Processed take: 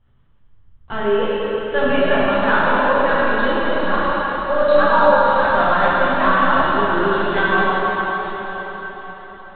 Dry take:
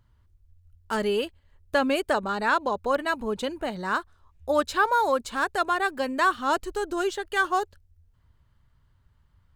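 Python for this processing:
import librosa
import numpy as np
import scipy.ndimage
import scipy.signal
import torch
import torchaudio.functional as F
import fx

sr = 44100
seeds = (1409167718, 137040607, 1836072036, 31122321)

y = fx.lpc_vocoder(x, sr, seeds[0], excitation='pitch_kept', order=10)
y = fx.comb(y, sr, ms=3.6, depth=0.59, at=(3.02, 4.83))
y = fx.rev_plate(y, sr, seeds[1], rt60_s=4.9, hf_ratio=1.0, predelay_ms=0, drr_db=-9.5)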